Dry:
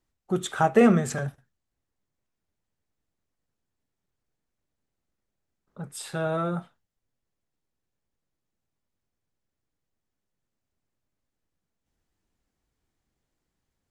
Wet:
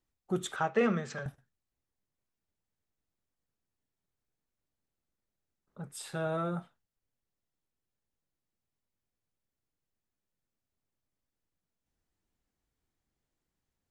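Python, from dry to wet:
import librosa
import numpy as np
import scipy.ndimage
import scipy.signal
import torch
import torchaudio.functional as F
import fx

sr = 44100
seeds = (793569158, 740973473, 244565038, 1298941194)

y = fx.cabinet(x, sr, low_hz=200.0, low_slope=12, high_hz=5600.0, hz=(270.0, 380.0, 710.0), db=(-10, -5, -8), at=(0.56, 1.26))
y = y * 10.0 ** (-5.5 / 20.0)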